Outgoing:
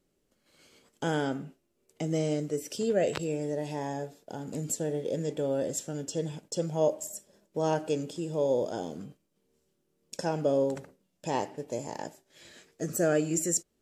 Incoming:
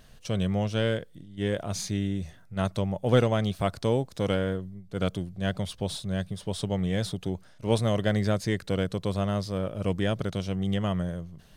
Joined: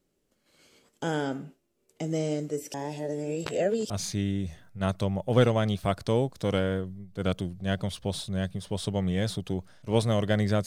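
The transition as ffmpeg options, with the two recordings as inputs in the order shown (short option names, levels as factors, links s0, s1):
-filter_complex "[0:a]apad=whole_dur=10.66,atrim=end=10.66,asplit=2[s0][s1];[s0]atrim=end=2.742[s2];[s1]atrim=start=2.738:end=3.902,asetpts=PTS-STARTPTS,areverse[s3];[1:a]atrim=start=1.658:end=8.42[s4];[s2][s3]acrossfade=d=0.004:c1=hsin:c2=hsin[s5];[s5][s4]acrossfade=d=0.004:c1=hsin:c2=hsin"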